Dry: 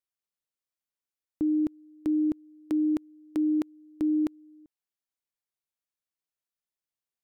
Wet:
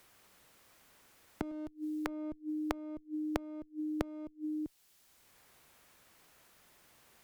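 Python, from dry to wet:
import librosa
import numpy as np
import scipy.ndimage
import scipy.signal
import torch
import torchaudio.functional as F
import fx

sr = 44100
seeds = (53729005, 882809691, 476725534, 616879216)

y = fx.peak_eq(x, sr, hz=190.0, db=-12.0, octaves=0.61, at=(1.51, 2.07))
y = fx.clip_asym(y, sr, top_db=-37.0, bottom_db=-22.0)
y = fx.gate_flip(y, sr, shuts_db=-40.0, range_db=-27)
y = fx.band_squash(y, sr, depth_pct=70)
y = y * 10.0 ** (13.5 / 20.0)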